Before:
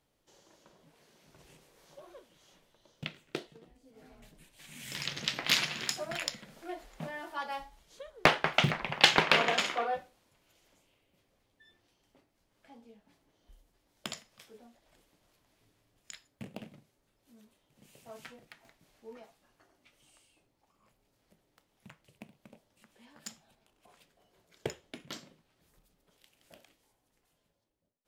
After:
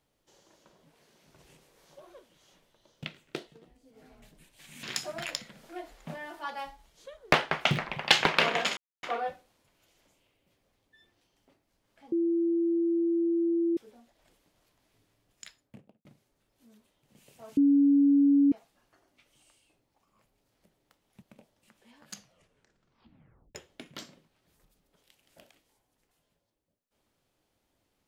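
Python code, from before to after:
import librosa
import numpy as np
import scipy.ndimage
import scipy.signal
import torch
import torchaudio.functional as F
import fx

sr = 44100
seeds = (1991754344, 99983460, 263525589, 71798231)

y = fx.studio_fade_out(x, sr, start_s=16.13, length_s=0.59)
y = fx.edit(y, sr, fx.cut(start_s=4.83, length_s=0.93),
    fx.insert_silence(at_s=9.7, length_s=0.26),
    fx.bleep(start_s=12.79, length_s=1.65, hz=337.0, db=-23.5),
    fx.bleep(start_s=18.24, length_s=0.95, hz=282.0, db=-18.0),
    fx.cut(start_s=21.89, length_s=0.47),
    fx.tape_stop(start_s=23.18, length_s=1.51), tone=tone)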